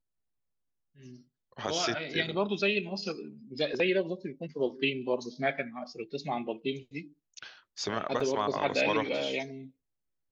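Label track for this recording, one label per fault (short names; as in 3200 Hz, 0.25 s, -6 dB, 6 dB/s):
8.200000	8.200000	gap 4.2 ms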